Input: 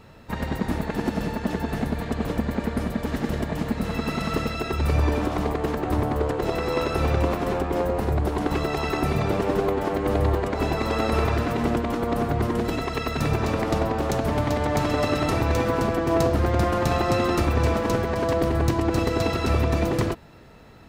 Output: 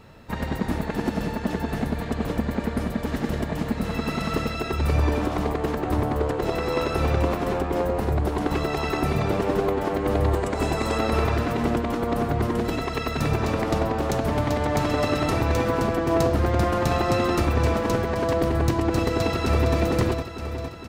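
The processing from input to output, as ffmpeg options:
-filter_complex "[0:a]asettb=1/sr,asplit=3[a][b][c];[a]atrim=end=10.324[d];[b]atrim=start=10.32:end=10.98,asetpts=PTS-STARTPTS,afade=t=in:d=0.004:c=qsin,afade=t=out:st=0.656:d=0.004:c=qsin,equalizer=f=8.2k:t=o:w=0.67:g=9.5[e];[c]atrim=start=10.976[f];[d][e]acrossfade=d=0.004:c1=hsin:c2=qsin[g];[g][f]acrossfade=d=0.004:c1=qsin:c2=hsin,asplit=2[h][i];[i]afade=t=in:st=19.04:d=0.01,afade=t=out:st=19.76:d=0.01,aecho=0:1:460|920|1380|1840|2300|2760|3220|3680|4140:0.446684|0.290344|0.188724|0.12267|0.0797358|0.0518283|0.0336884|0.0218974|0.0142333[j];[h][j]amix=inputs=2:normalize=0"

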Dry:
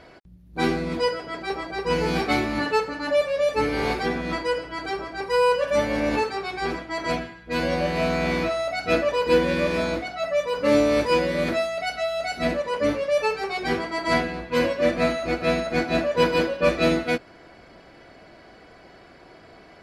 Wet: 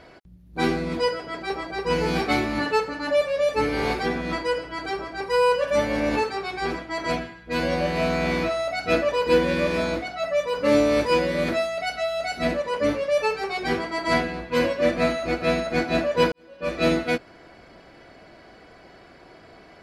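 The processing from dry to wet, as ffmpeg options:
-filter_complex "[0:a]asplit=2[a][b];[a]atrim=end=16.32,asetpts=PTS-STARTPTS,afade=t=out:st=16.316:d=0.004:c=hsin[c];[b]atrim=start=16.32,asetpts=PTS-STARTPTS,afade=t=in:d=0.55:c=qua[d];[c][d]concat=n=2:v=0:a=1"

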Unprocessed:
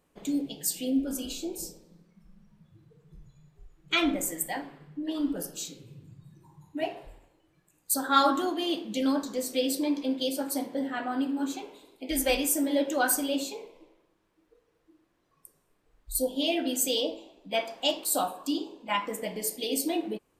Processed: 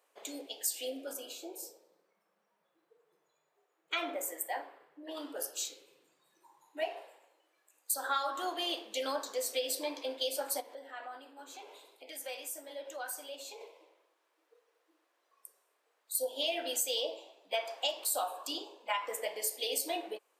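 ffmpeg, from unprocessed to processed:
-filter_complex "[0:a]asettb=1/sr,asplit=3[a][b][c];[a]atrim=end=1.134[d];[b]atrim=start=1.13:end=5.17,asetpts=PTS-STARTPTS,afade=t=in:d=0.004:c=qsin,afade=t=out:st=4.036:d=0.004:c=qsin,equalizer=f=5.6k:w=0.36:g=-8.5[e];[c]atrim=start=5.166[f];[d][e]acrossfade=d=0.004:c1=hsin:c2=qsin[g];[g][f]acrossfade=d=0.004:c1=qsin:c2=hsin,asettb=1/sr,asplit=3[h][i][j];[h]atrim=end=10.604[k];[i]atrim=start=10.6:end=13.61,asetpts=PTS-STARTPTS,afade=t=in:d=0.004:c=qsin,afade=t=out:st=3.006:d=0.004:c=qsin,acompressor=threshold=-44dB:ratio=2.5:attack=3.2:release=140:knee=1:detection=peak[l];[j]atrim=start=13.606[m];[k][l]acrossfade=d=0.004:c1=hsin:c2=qsin[n];[n][m]acrossfade=d=0.004:c1=qsin:c2=hsin,highpass=f=480:w=0.5412,highpass=f=480:w=1.3066,acompressor=threshold=-29dB:ratio=12"

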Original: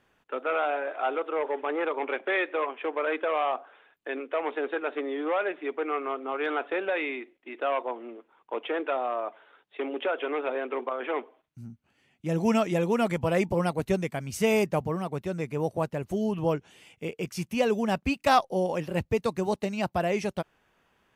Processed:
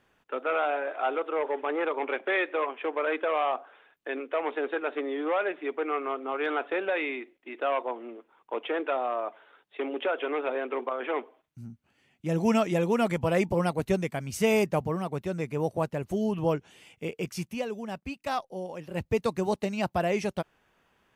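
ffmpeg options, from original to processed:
-filter_complex "[0:a]asplit=3[a][b][c];[a]atrim=end=17.66,asetpts=PTS-STARTPTS,afade=t=out:st=17.33:d=0.33:silence=0.334965[d];[b]atrim=start=17.66:end=18.83,asetpts=PTS-STARTPTS,volume=-9.5dB[e];[c]atrim=start=18.83,asetpts=PTS-STARTPTS,afade=t=in:d=0.33:silence=0.334965[f];[d][e][f]concat=n=3:v=0:a=1"

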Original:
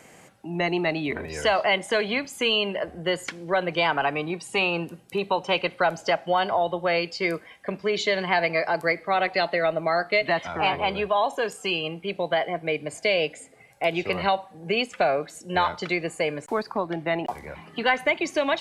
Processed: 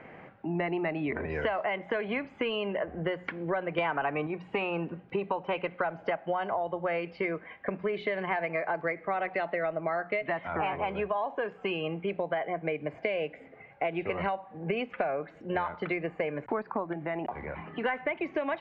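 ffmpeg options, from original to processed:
-filter_complex "[0:a]asettb=1/sr,asplit=3[a][b][c];[a]atrim=end=3.784[d];[b]atrim=start=3.78:end=4.27,asetpts=PTS-STARTPTS,afade=t=in:d=0.004:c=qsin,afade=t=out:st=0.486:d=0.004:c=qsin,acontrast=87[e];[c]atrim=start=4.266[f];[d][e]acrossfade=d=0.004:c1=hsin:c2=qsin[g];[g][f]acrossfade=d=0.004:c1=qsin:c2=hsin,asplit=3[h][i][j];[h]afade=t=out:st=16.92:d=0.02[k];[i]acompressor=threshold=-37dB:ratio=2:attack=3.2:release=140:knee=1:detection=peak,afade=t=in:st=16.92:d=0.02,afade=t=out:st=17.83:d=0.02[l];[j]afade=t=in:st=17.83:d=0.02[m];[k][l][m]amix=inputs=3:normalize=0,lowpass=f=2.3k:w=0.5412,lowpass=f=2.3k:w=1.3066,bandreject=f=60:t=h:w=6,bandreject=f=120:t=h:w=6,bandreject=f=180:t=h:w=6,acompressor=threshold=-31dB:ratio=6,volume=3dB"

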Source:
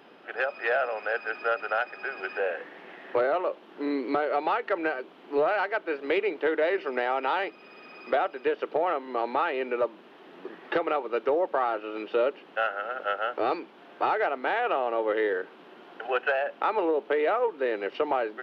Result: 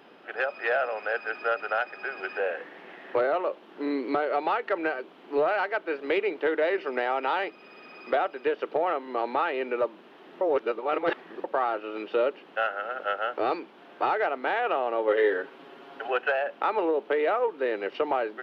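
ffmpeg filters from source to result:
-filter_complex "[0:a]asettb=1/sr,asplit=3[a][b][c];[a]atrim=end=15.074[d];[b]atrim=start=15.07:end=16.09,asetpts=PTS-STARTPTS,afade=t=in:d=0.004:c=qsin,afade=t=out:st=1.016:d=0.004:c=qsin,aecho=1:1:7.3:0.82,atrim=end_sample=44982[e];[c]atrim=start=16.086[f];[d][e]acrossfade=d=0.004:c1=hsin:c2=qsin[g];[g][f]acrossfade=d=0.004:c1=qsin:c2=hsin,asplit=3[h][i][j];[h]atrim=end=10.412[k];[i]atrim=start=10.408:end=11.442,asetpts=PTS-STARTPTS,areverse[l];[j]atrim=start=11.438[m];[k][l]acrossfade=d=0.004:c1=hsin:c2=hsin[n];[n][m]acrossfade=d=0.004:c1=hsin:c2=hsin"

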